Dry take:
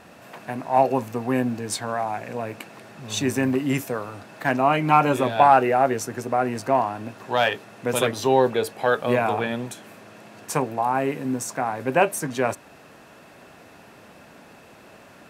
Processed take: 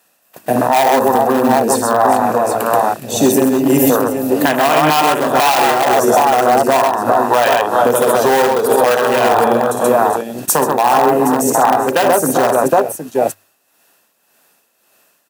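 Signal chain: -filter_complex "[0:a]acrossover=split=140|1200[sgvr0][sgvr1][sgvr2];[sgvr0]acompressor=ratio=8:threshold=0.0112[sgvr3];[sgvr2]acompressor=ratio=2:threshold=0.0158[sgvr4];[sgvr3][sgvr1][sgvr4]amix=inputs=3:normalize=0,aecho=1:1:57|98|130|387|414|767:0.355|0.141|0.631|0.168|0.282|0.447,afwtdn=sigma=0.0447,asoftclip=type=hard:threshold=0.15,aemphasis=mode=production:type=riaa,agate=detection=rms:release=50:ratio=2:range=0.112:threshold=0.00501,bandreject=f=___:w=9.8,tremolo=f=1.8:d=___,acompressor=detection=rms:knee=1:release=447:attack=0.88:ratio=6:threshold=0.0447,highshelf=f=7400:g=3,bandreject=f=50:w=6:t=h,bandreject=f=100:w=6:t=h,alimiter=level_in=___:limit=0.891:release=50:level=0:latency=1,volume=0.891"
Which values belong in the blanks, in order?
2200, 0.6, 15.8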